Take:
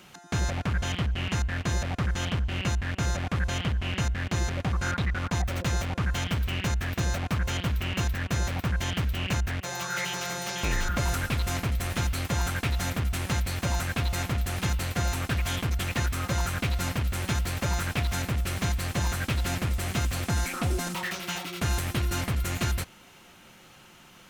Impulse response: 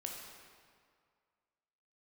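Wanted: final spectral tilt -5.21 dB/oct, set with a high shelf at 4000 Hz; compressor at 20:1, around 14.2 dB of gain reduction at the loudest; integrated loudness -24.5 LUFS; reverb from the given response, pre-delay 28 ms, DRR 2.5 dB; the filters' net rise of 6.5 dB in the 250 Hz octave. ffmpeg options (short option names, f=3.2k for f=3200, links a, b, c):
-filter_complex "[0:a]equalizer=f=250:t=o:g=9,highshelf=f=4k:g=-4,acompressor=threshold=-35dB:ratio=20,asplit=2[a][b];[1:a]atrim=start_sample=2205,adelay=28[c];[b][c]afir=irnorm=-1:irlink=0,volume=-1.5dB[d];[a][d]amix=inputs=2:normalize=0,volume=14dB"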